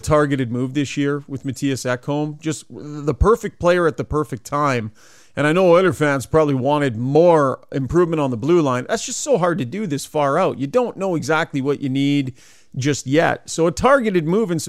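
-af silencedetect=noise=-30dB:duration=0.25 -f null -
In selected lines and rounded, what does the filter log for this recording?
silence_start: 4.88
silence_end: 5.37 | silence_duration: 0.49
silence_start: 12.30
silence_end: 12.75 | silence_duration: 0.44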